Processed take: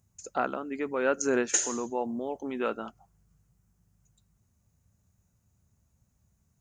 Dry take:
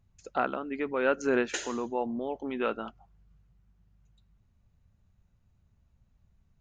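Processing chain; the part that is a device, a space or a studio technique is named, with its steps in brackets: budget condenser microphone (HPF 73 Hz 12 dB/oct; resonant high shelf 5100 Hz +12 dB, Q 1.5)

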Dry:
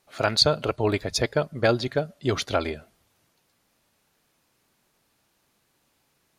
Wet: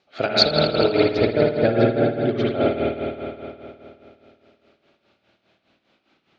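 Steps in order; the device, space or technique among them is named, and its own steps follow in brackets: 1.12–2.71 LPF 1200 Hz 6 dB/oct; combo amplifier with spring reverb and tremolo (spring tank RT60 2.8 s, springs 52 ms, chirp 30 ms, DRR -5.5 dB; tremolo 4.9 Hz, depth 72%; speaker cabinet 78–4500 Hz, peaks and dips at 92 Hz -8 dB, 140 Hz -7 dB, 1000 Hz -9 dB, 1800 Hz -5 dB); dynamic EQ 1100 Hz, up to -5 dB, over -42 dBFS, Q 1.8; gain +5.5 dB

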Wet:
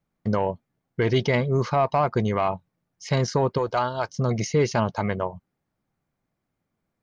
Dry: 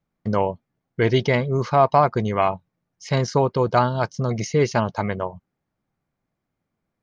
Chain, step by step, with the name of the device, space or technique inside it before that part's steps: soft clipper into limiter (soft clip -7 dBFS, distortion -22 dB; limiter -13 dBFS, peak gain reduction 5 dB); 3.58–4.09 bell 170 Hz -14.5 dB 1.4 oct

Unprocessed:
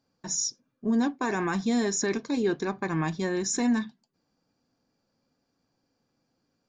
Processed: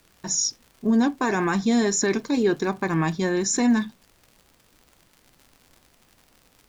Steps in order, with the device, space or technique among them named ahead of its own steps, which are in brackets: vinyl LP (wow and flutter 22 cents; crackle 95/s -44 dBFS; pink noise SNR 36 dB); gain +5 dB

